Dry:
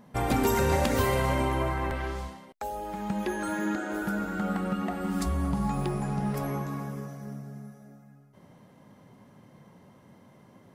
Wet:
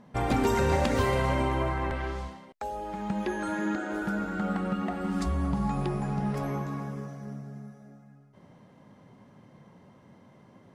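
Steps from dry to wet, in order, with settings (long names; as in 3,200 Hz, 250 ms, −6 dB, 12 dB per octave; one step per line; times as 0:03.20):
high-frequency loss of the air 52 metres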